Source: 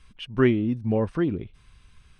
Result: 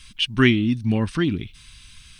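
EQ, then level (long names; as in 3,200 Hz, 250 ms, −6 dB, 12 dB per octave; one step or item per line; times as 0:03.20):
drawn EQ curve 290 Hz 0 dB, 490 Hz −12 dB, 3,600 Hz +14 dB
+4.5 dB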